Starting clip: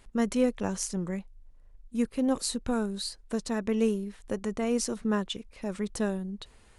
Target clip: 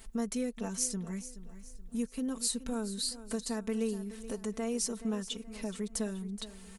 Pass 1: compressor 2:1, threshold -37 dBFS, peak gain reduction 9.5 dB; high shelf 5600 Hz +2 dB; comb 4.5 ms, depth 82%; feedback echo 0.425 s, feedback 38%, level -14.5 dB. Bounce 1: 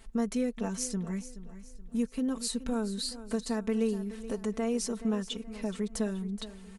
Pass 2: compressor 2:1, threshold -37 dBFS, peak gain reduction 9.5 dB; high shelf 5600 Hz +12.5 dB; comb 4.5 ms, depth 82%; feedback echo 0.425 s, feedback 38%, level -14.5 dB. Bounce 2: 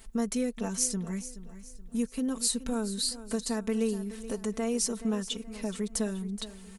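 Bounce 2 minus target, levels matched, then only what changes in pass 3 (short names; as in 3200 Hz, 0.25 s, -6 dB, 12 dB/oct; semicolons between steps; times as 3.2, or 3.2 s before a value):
compressor: peak gain reduction -4 dB
change: compressor 2:1, threshold -45 dBFS, peak gain reduction 13.5 dB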